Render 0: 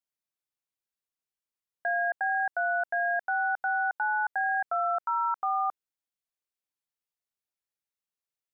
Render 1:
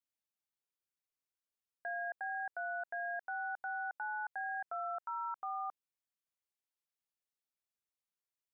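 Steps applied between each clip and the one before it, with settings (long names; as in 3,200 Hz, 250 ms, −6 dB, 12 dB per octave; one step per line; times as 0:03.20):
brickwall limiter −28 dBFS, peak gain reduction 6.5 dB
level −5 dB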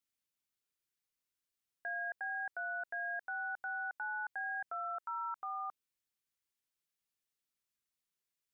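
parametric band 730 Hz −7 dB 1.2 octaves
level +3.5 dB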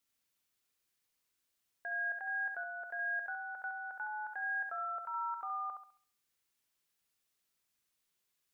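brickwall limiter −40 dBFS, peak gain reduction 7.5 dB
on a send: feedback echo with a high-pass in the loop 68 ms, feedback 38%, high-pass 360 Hz, level −5 dB
on the sum: level +6 dB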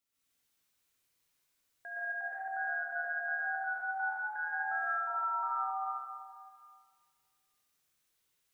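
dense smooth reverb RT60 1.9 s, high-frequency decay 0.85×, pre-delay 105 ms, DRR −8.5 dB
level −4.5 dB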